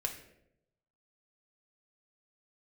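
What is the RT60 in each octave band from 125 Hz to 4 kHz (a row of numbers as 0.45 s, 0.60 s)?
1.1 s, 0.90 s, 0.95 s, 0.65 s, 0.65 s, 0.50 s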